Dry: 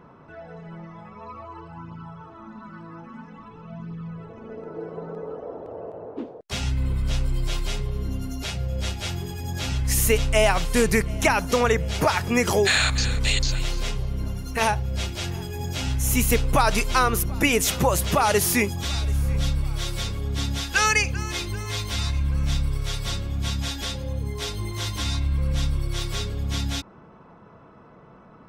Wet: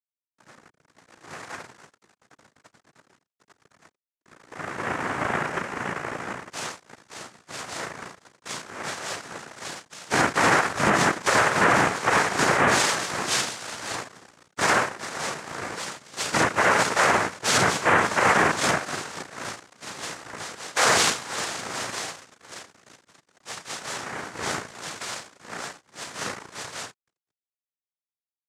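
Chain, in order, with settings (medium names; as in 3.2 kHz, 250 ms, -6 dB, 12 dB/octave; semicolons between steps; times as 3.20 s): vocoder on a held chord major triad, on A#2; steep high-pass 480 Hz 48 dB/octave; delay 515 ms -13.5 dB; 22.62–23.23 s: compression 6:1, threshold -48 dBFS, peak gain reduction 10 dB; reverberation RT60 0.75 s, pre-delay 16 ms, DRR -7 dB; level rider gain up to 7 dB; crossover distortion -28 dBFS; noise-vocoded speech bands 3; loudness maximiser +7 dB; trim -8.5 dB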